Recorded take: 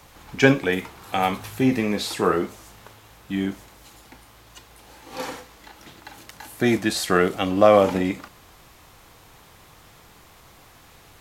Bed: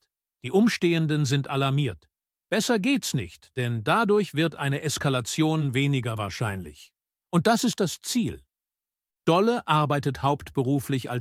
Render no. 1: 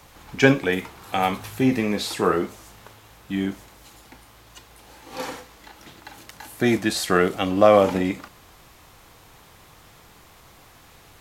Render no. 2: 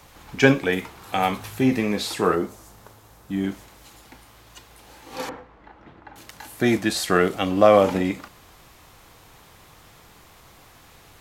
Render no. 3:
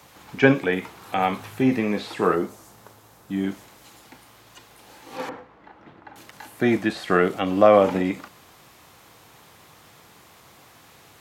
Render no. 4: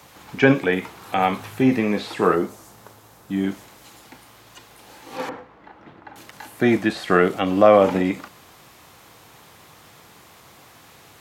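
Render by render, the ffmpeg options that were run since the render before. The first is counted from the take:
-af anull
-filter_complex "[0:a]asettb=1/sr,asplit=3[a][b][c];[a]atrim=end=2.354[d];[b]atrim=start=2.35:end=3.44,asetpts=PTS-STARTPTS,afade=t=in:d=0.004:c=qsin,afade=t=out:st=1.086:d=0.004:c=qsin,equalizer=f=2.7k:w=0.85:g=-7.5[e];[c]atrim=start=3.436[f];[d][e]acrossfade=d=0.004:c1=hsin:c2=qsin[g];[g][f]acrossfade=d=0.004:c1=qsin:c2=hsin,asettb=1/sr,asplit=3[h][i][j];[h]atrim=end=5.294[k];[i]atrim=start=5.29:end=6.16,asetpts=PTS-STARTPTS,afade=t=in:d=0.004:c=qsin,afade=t=out:st=0.866:d=0.004:c=qsin,lowpass=1.5k[l];[j]atrim=start=6.156[m];[k][l]acrossfade=d=0.004:c1=hsin:c2=qsin[n];[n][m]acrossfade=d=0.004:c1=qsin:c2=hsin"
-filter_complex "[0:a]highpass=110,acrossover=split=3100[a][b];[b]acompressor=threshold=-46dB:ratio=4:attack=1:release=60[c];[a][c]amix=inputs=2:normalize=0"
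-af "volume=2.5dB,alimiter=limit=-3dB:level=0:latency=1"

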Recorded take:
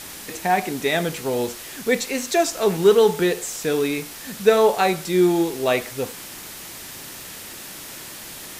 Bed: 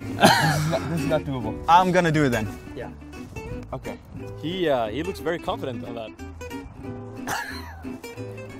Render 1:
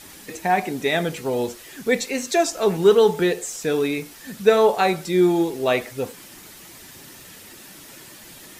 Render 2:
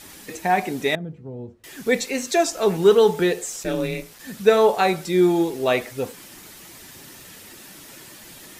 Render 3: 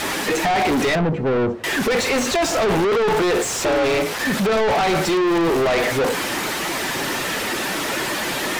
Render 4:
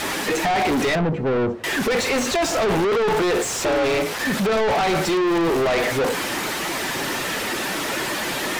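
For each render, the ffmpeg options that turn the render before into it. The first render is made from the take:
-af "afftdn=nr=8:nf=-37"
-filter_complex "[0:a]asettb=1/sr,asplit=3[a][b][c];[a]atrim=end=0.954[d];[b]atrim=start=0.95:end=1.64,asetpts=PTS-STARTPTS,afade=t=in:d=0.004:c=qsin,afade=t=out:st=0.686:d=0.004:c=qsin,bandpass=f=110:t=q:w=1.3[e];[c]atrim=start=1.636[f];[d][e]acrossfade=d=0.004:c1=hsin:c2=qsin[g];[g][f]acrossfade=d=0.004:c1=qsin:c2=hsin,asplit=3[h][i][j];[h]afade=t=out:st=3.63:d=0.02[k];[i]aeval=exprs='val(0)*sin(2*PI*130*n/s)':c=same,afade=t=in:st=3.63:d=0.02,afade=t=out:st=4.18:d=0.02[l];[j]afade=t=in:st=4.18:d=0.02[m];[k][l][m]amix=inputs=3:normalize=0"
-filter_complex "[0:a]asplit=2[a][b];[b]highpass=f=720:p=1,volume=40dB,asoftclip=type=tanh:threshold=-2.5dB[c];[a][c]amix=inputs=2:normalize=0,lowpass=f=1.2k:p=1,volume=-6dB,asoftclip=type=tanh:threshold=-16.5dB"
-af "volume=-1.5dB"

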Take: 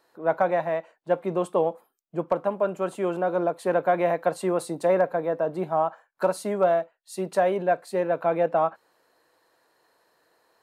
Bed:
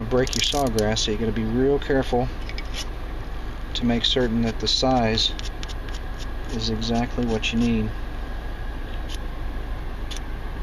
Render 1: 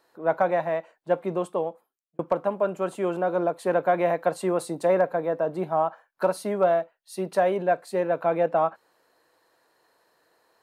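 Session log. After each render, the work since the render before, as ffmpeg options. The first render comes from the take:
-filter_complex "[0:a]asettb=1/sr,asplit=3[a][b][c];[a]atrim=end=5.654[d];[b]atrim=start=5.65:end=7.38,asetpts=PTS-STARTPTS,afade=t=in:d=0.004:c=qsin,afade=t=out:st=1.726:d=0.004:c=qsin,equalizer=f=7.4k:w=4.4:g=-7.5[e];[c]atrim=start=7.376[f];[d][e]acrossfade=d=0.004:c1=hsin:c2=qsin[g];[g][f]acrossfade=d=0.004:c1=qsin:c2=hsin,asplit=2[h][i];[h]atrim=end=2.19,asetpts=PTS-STARTPTS,afade=t=out:st=1.22:d=0.97[j];[i]atrim=start=2.19,asetpts=PTS-STARTPTS,afade=t=in:d=0.004:c=hsin[k];[j][k]concat=n=2:v=0:a=1"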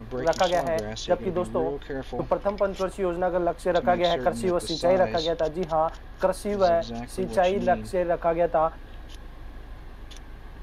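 -filter_complex "[1:a]volume=-11.5dB[a];[0:a][a]amix=inputs=2:normalize=0"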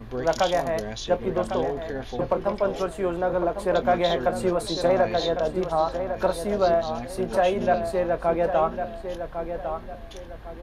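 -filter_complex "[0:a]asplit=2[a][b];[b]adelay=24,volume=-13dB[c];[a][c]amix=inputs=2:normalize=0,asplit=2[d][e];[e]adelay=1103,lowpass=f=2.7k:p=1,volume=-8dB,asplit=2[f][g];[g]adelay=1103,lowpass=f=2.7k:p=1,volume=0.34,asplit=2[h][i];[i]adelay=1103,lowpass=f=2.7k:p=1,volume=0.34,asplit=2[j][k];[k]adelay=1103,lowpass=f=2.7k:p=1,volume=0.34[l];[d][f][h][j][l]amix=inputs=5:normalize=0"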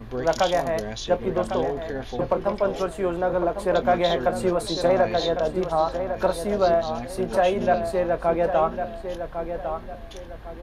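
-af "volume=1dB"

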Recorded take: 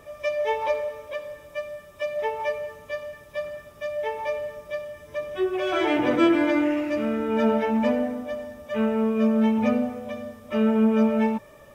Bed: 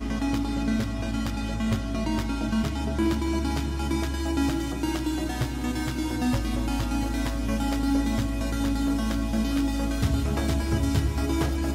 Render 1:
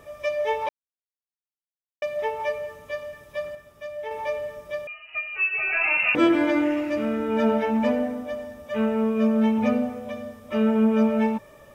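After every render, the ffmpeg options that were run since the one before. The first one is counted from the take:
-filter_complex "[0:a]asettb=1/sr,asplit=3[a][b][c];[a]atrim=end=4.874[d];[b]atrim=start=4.87:end=6.15,asetpts=PTS-STARTPTS,afade=t=in:d=0.004:c=qsin,afade=t=out:st=1.276:d=0.004:c=qsin,lowpass=f=2.6k:t=q:w=0.5098,lowpass=f=2.6k:t=q:w=0.6013,lowpass=f=2.6k:t=q:w=0.9,lowpass=f=2.6k:t=q:w=2.563,afreqshift=-3000[e];[c]atrim=start=6.146[f];[d][e]acrossfade=d=0.004:c1=hsin:c2=qsin[g];[g][f]acrossfade=d=0.004:c1=qsin:c2=hsin,asplit=5[h][i][j][k][l];[h]atrim=end=0.69,asetpts=PTS-STARTPTS,afade=t=out:st=0.686:d=0.004:c=hsin[m];[i]atrim=start=0.69:end=2.02,asetpts=PTS-STARTPTS,volume=0[n];[j]atrim=start=2.02:end=3.552,asetpts=PTS-STARTPTS,afade=t=in:d=0.004:c=hsin[o];[k]atrim=start=3.548:end=4.112,asetpts=PTS-STARTPTS,volume=-5dB[p];[l]atrim=start=4.108[q];[m][n][o]concat=n=3:v=0:a=1[r];[r][p]acrossfade=d=0.004:c1=hsin:c2=hsin[s];[s][q]acrossfade=d=0.004:c1=hsin:c2=hsin"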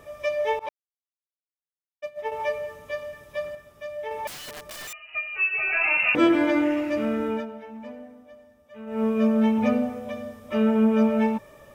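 -filter_complex "[0:a]asettb=1/sr,asplit=3[a][b][c];[a]atrim=end=0.594[d];[b]atrim=start=0.59:end=2.32,asetpts=PTS-STARTPTS,afade=t=in:d=0.004:c=qsin,afade=t=out:st=1.726:d=0.004:c=qsin,agate=range=-33dB:threshold=-22dB:ratio=3:release=100:detection=peak[e];[c]atrim=start=2.316[f];[d][e]acrossfade=d=0.004:c1=hsin:c2=qsin[g];[g][f]acrossfade=d=0.004:c1=qsin:c2=hsin,asettb=1/sr,asplit=3[h][i][j];[h]atrim=end=4.274[k];[i]atrim=start=4.27:end=4.93,asetpts=PTS-STARTPTS,afade=t=in:d=0.004:c=qsin,afade=t=out:st=0.656:d=0.004:c=qsin,aeval=exprs='(mod(50.1*val(0)+1,2)-1)/50.1':c=same[l];[j]atrim=start=4.926[m];[k][l]acrossfade=d=0.004:c1=hsin:c2=qsin[n];[n][m]acrossfade=d=0.004:c1=qsin:c2=hsin,asplit=3[o][p][q];[o]atrim=end=7.46,asetpts=PTS-STARTPTS,afade=t=out:st=7.27:d=0.19:silence=0.141254[r];[p]atrim=start=7.46:end=8.86,asetpts=PTS-STARTPTS,volume=-17dB[s];[q]atrim=start=8.86,asetpts=PTS-STARTPTS,afade=t=in:d=0.19:silence=0.141254[t];[r][s][t]concat=n=3:v=0:a=1"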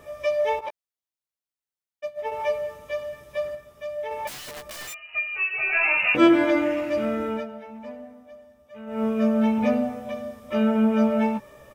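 -filter_complex "[0:a]asplit=2[a][b];[b]adelay=15,volume=-6.5dB[c];[a][c]amix=inputs=2:normalize=0"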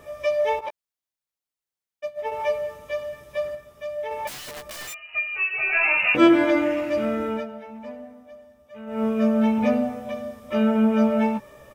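-af "volume=1dB"

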